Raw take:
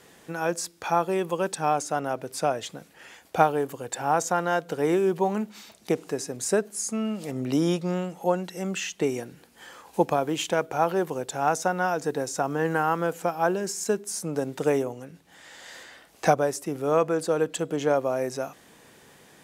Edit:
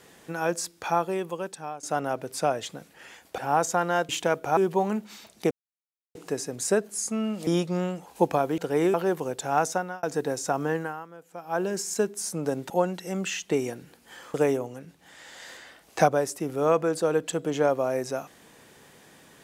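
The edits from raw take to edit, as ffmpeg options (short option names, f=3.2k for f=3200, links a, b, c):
-filter_complex "[0:a]asplit=15[a][b][c][d][e][f][g][h][i][j][k][l][m][n][o];[a]atrim=end=1.83,asetpts=PTS-STARTPTS,afade=t=out:st=0.8:d=1.03:silence=0.133352[p];[b]atrim=start=1.83:end=3.382,asetpts=PTS-STARTPTS,afade=t=in:d=0.004:c=hsin:silence=0.133352[q];[c]atrim=start=3.948:end=4.662[r];[d]atrim=start=10.358:end=10.842[s];[e]atrim=start=5.018:end=5.96,asetpts=PTS-STARTPTS,afade=t=out:st=0.938:d=0.004:c=hsin,apad=pad_dur=0.64[t];[f]atrim=start=5.96:end=7.282,asetpts=PTS-STARTPTS,afade=t=in:d=0.004:c=hsin[u];[g]atrim=start=7.608:end=8.202[v];[h]atrim=start=9.838:end=10.362[w];[i]atrim=start=4.658:end=5.022[x];[j]atrim=start=10.838:end=11.93,asetpts=PTS-STARTPTS,afade=t=out:st=0.752:d=0.34[y];[k]atrim=start=11.93:end=13.03,asetpts=PTS-STARTPTS,afade=t=in:d=0.004:c=hsin,afade=t=out:st=0.65:d=0.45:c=qua:silence=0.1[z];[l]atrim=start=13.03:end=13.12,asetpts=PTS-STARTPTS,volume=-20dB[aa];[m]atrim=start=13.12:end=14.602,asetpts=PTS-STARTPTS,afade=t=in:d=0.45:c=qua:silence=0.1[ab];[n]atrim=start=8.198:end=9.842[ac];[o]atrim=start=14.598[ad];[p][q]concat=n=2:v=0:a=1[ae];[ae][r]acrossfade=d=0.004:c1=hsin:c2=hsin[af];[af][s]acrossfade=d=0.004:c1=hsin:c2=hsin[ag];[t][u]concat=n=2:v=0:a=1[ah];[ag][ah]acrossfade=d=0.004:c1=hsin:c2=hsin[ai];[ai][v]acrossfade=d=0.004:c1=hsin:c2=hsin[aj];[aj][w]acrossfade=d=0.004:c1=hsin:c2=hsin[ak];[ak][x]acrossfade=d=0.004:c1=hsin:c2=hsin[al];[y][z][aa][ab]concat=n=4:v=0:a=1[am];[al][am]acrossfade=d=0.004:c1=hsin:c2=hsin[an];[an][ac]acrossfade=d=0.004:c1=hsin:c2=hsin[ao];[ao][ad]acrossfade=d=0.004:c1=hsin:c2=hsin"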